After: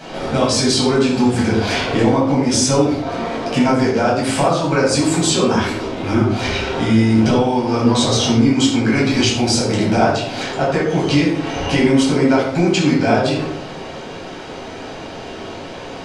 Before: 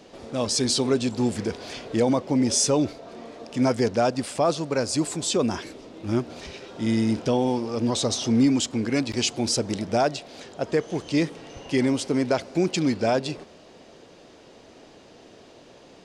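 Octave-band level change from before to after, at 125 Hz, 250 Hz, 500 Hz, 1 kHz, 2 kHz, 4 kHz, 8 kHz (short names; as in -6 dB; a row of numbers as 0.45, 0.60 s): +11.0, +8.5, +7.5, +10.5, +12.5, +9.0, +5.5 dB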